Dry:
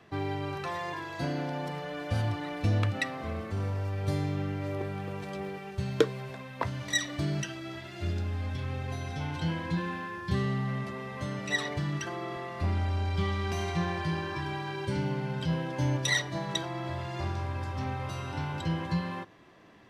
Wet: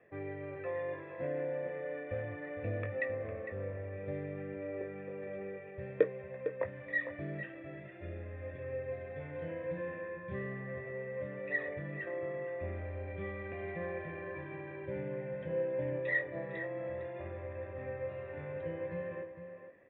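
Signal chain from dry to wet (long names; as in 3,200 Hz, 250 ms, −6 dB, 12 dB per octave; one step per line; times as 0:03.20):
formant resonators in series e
parametric band 1,200 Hz +5 dB 0.33 octaves
double-tracking delay 21 ms −9 dB
slap from a distant wall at 78 metres, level −9 dB
level +5.5 dB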